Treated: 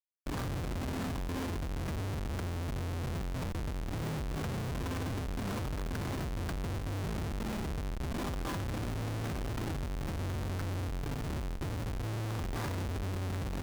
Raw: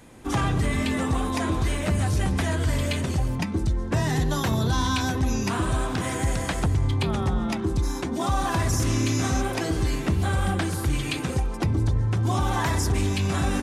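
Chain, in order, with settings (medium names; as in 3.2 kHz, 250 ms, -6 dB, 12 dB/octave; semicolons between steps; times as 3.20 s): steep low-pass 9.8 kHz; hum notches 60/120/180/240/300/360/420/480/540 Hz; peak limiter -18 dBFS, peak gain reduction 5 dB; static phaser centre 1.4 kHz, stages 4; reverberation RT60 1.8 s, pre-delay 88 ms, DRR 13.5 dB; Schmitt trigger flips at -29 dBFS; flutter echo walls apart 7.4 m, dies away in 0.21 s; valve stage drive 34 dB, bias 0.8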